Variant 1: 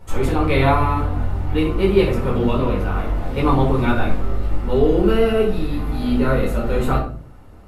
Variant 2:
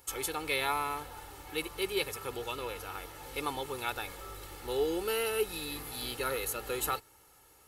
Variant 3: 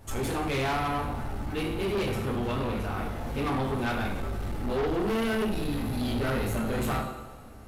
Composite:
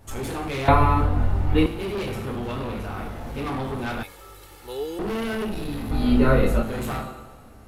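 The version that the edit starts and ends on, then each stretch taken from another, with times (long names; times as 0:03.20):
3
0:00.68–0:01.66: punch in from 1
0:04.03–0:04.99: punch in from 2
0:05.91–0:06.63: punch in from 1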